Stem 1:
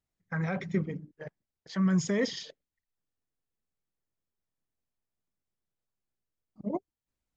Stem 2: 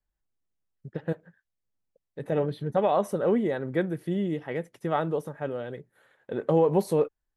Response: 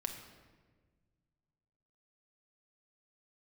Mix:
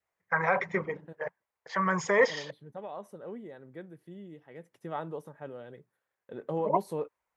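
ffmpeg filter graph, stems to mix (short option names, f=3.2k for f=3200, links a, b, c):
-filter_complex "[0:a]equalizer=f=125:t=o:w=1:g=-6,equalizer=f=250:t=o:w=1:g=-9,equalizer=f=500:t=o:w=1:g=9,equalizer=f=1k:t=o:w=1:g=11,equalizer=f=2k:t=o:w=1:g=10,equalizer=f=4k:t=o:w=1:g=-4,volume=-1.5dB[a];[1:a]agate=range=-16dB:threshold=-58dB:ratio=16:detection=peak,volume=-10.5dB,afade=t=in:st=4.52:d=0.21:silence=0.421697[b];[a][b]amix=inputs=2:normalize=0,adynamicequalizer=threshold=0.00447:dfrequency=960:dqfactor=3:tfrequency=960:tqfactor=3:attack=5:release=100:ratio=0.375:range=3:mode=boostabove:tftype=bell,highpass=85"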